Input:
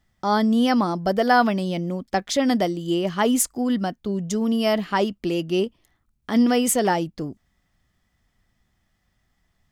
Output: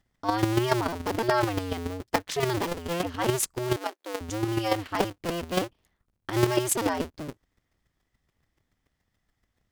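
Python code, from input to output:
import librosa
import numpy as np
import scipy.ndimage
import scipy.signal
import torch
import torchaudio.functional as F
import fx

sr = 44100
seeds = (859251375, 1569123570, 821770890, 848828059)

y = fx.cycle_switch(x, sr, every=2, mode='inverted')
y = fx.highpass(y, sr, hz=360.0, slope=24, at=(3.76, 4.21))
y = fx.chopper(y, sr, hz=7.0, depth_pct=60, duty_pct=10)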